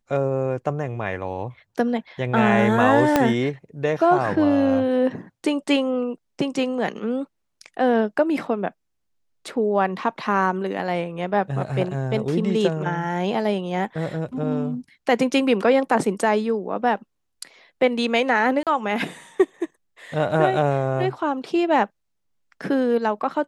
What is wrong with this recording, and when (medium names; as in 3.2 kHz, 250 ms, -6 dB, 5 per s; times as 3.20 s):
3.16 s: pop -3 dBFS
18.63–18.67 s: dropout 37 ms